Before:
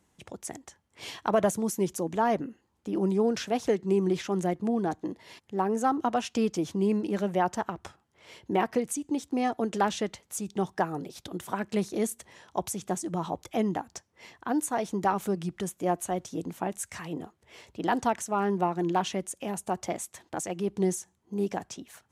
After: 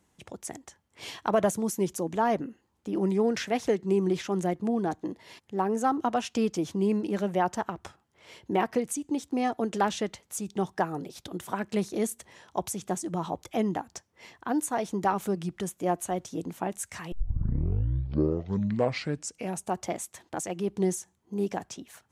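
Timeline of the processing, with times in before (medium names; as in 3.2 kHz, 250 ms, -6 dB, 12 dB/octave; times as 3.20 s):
2.98–3.65 s: peaking EQ 2 kHz +8.5 dB 0.45 oct
17.12 s: tape start 2.57 s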